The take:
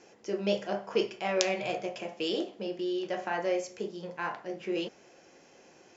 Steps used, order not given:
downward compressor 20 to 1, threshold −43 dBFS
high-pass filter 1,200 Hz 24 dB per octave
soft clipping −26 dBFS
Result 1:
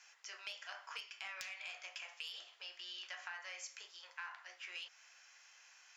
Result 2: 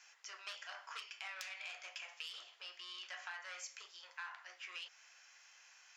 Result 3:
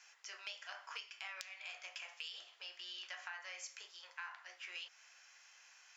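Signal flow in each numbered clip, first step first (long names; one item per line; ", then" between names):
high-pass filter, then soft clipping, then downward compressor
soft clipping, then high-pass filter, then downward compressor
high-pass filter, then downward compressor, then soft clipping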